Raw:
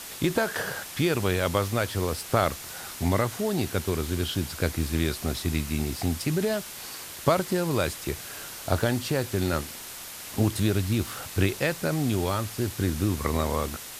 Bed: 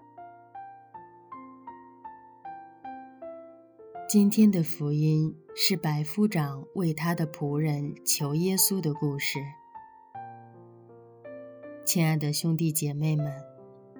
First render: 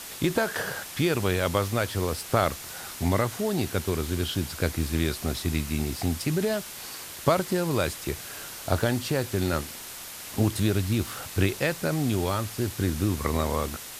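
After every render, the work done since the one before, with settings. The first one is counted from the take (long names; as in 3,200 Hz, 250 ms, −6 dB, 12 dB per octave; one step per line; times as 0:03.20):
no processing that can be heard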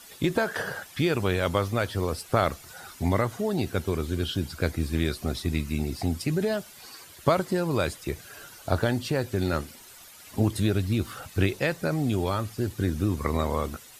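broadband denoise 12 dB, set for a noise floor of −40 dBFS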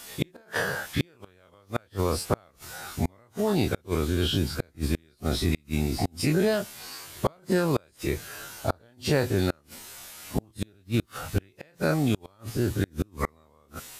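every bin's largest magnitude spread in time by 60 ms
gate with flip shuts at −12 dBFS, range −35 dB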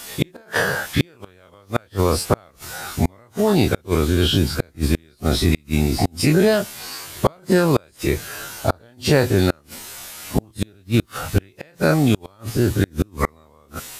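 level +8 dB
brickwall limiter −2 dBFS, peak gain reduction 2 dB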